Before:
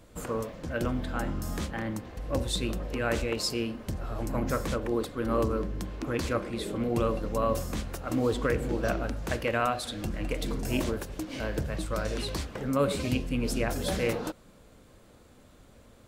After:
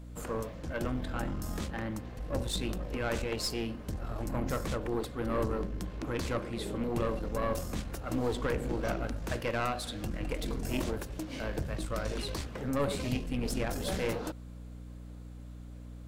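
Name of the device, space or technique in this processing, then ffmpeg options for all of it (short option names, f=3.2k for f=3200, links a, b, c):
valve amplifier with mains hum: -af "aeval=exprs='(tanh(14.1*val(0)+0.5)-tanh(0.5))/14.1':c=same,aeval=exprs='val(0)+0.00708*(sin(2*PI*60*n/s)+sin(2*PI*2*60*n/s)/2+sin(2*PI*3*60*n/s)/3+sin(2*PI*4*60*n/s)/4+sin(2*PI*5*60*n/s)/5)':c=same,volume=-1dB"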